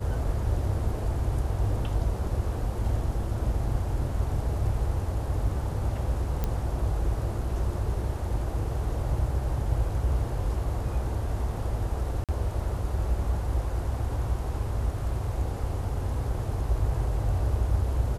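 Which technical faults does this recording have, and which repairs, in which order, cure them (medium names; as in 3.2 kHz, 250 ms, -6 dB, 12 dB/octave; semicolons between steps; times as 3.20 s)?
6.44 s: pop -15 dBFS
12.24–12.29 s: dropout 47 ms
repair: de-click; interpolate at 12.24 s, 47 ms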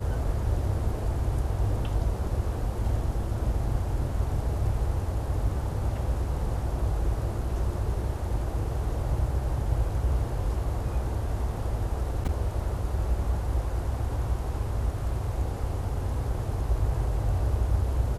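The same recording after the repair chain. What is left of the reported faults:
nothing left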